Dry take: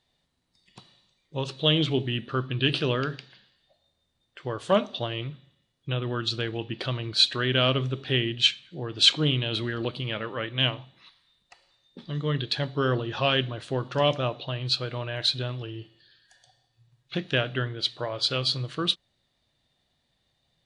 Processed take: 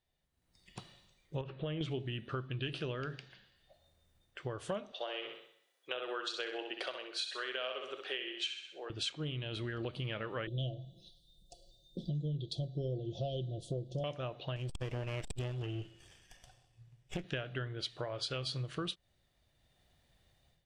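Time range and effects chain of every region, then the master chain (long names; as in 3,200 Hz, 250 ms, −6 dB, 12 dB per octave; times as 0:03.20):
0:01.41–0:01.81: low-pass filter 2,500 Hz 24 dB per octave + downward compressor 2 to 1, threshold −34 dBFS
0:04.92–0:08.90: high-pass filter 440 Hz 24 dB per octave + flutter between parallel walls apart 10.9 metres, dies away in 0.53 s
0:10.47–0:14.04: Chebyshev band-stop filter 670–3,400 Hz, order 4 + low-shelf EQ 130 Hz +9 dB + comb filter 5.8 ms, depth 47%
0:14.56–0:17.24: lower of the sound and its delayed copy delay 0.37 ms + low-pass filter 7,900 Hz + saturating transformer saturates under 590 Hz
whole clip: automatic gain control gain up to 14 dB; octave-band graphic EQ 125/250/500/1,000/2,000/4,000/8,000 Hz −5/−9/−4/−8/−4/−12/−5 dB; downward compressor, threshold −32 dBFS; level −3.5 dB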